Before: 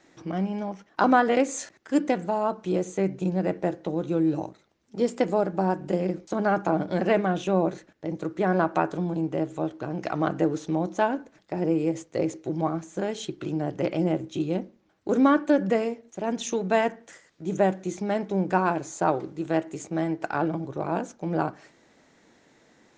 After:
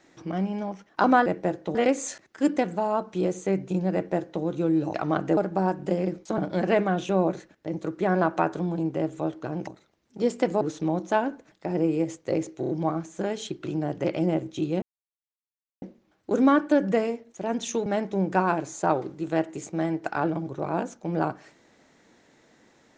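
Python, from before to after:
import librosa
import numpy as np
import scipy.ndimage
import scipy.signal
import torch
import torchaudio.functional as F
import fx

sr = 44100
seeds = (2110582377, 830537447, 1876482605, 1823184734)

y = fx.edit(x, sr, fx.duplicate(start_s=3.45, length_s=0.49, to_s=1.26),
    fx.swap(start_s=4.45, length_s=0.94, other_s=10.05, other_length_s=0.43),
    fx.cut(start_s=6.4, length_s=0.36),
    fx.stutter(start_s=12.47, slice_s=0.03, count=4),
    fx.insert_silence(at_s=14.6, length_s=1.0),
    fx.cut(start_s=16.64, length_s=1.4), tone=tone)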